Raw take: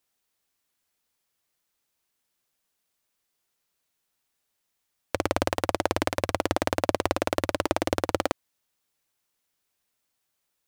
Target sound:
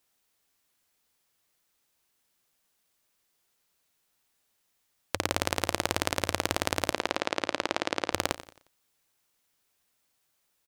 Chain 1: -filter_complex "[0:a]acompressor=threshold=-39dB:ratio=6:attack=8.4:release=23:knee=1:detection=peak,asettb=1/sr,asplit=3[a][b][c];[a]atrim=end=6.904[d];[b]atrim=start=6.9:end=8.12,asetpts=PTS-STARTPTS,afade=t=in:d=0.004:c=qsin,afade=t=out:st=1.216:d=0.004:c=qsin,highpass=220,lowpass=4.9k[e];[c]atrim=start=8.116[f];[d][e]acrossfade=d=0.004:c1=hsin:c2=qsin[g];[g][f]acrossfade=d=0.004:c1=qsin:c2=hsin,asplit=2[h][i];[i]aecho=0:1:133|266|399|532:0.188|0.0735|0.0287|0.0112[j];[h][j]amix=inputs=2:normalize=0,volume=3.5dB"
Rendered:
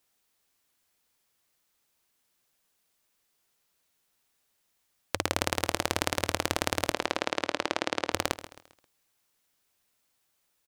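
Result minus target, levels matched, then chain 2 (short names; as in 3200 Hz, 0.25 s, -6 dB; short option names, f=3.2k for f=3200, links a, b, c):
echo 44 ms late
-filter_complex "[0:a]acompressor=threshold=-39dB:ratio=6:attack=8.4:release=23:knee=1:detection=peak,asettb=1/sr,asplit=3[a][b][c];[a]atrim=end=6.904[d];[b]atrim=start=6.9:end=8.12,asetpts=PTS-STARTPTS,afade=t=in:d=0.004:c=qsin,afade=t=out:st=1.216:d=0.004:c=qsin,highpass=220,lowpass=4.9k[e];[c]atrim=start=8.116[f];[d][e]acrossfade=d=0.004:c1=hsin:c2=qsin[g];[g][f]acrossfade=d=0.004:c1=qsin:c2=hsin,asplit=2[h][i];[i]aecho=0:1:89|178|267|356:0.188|0.0735|0.0287|0.0112[j];[h][j]amix=inputs=2:normalize=0,volume=3.5dB"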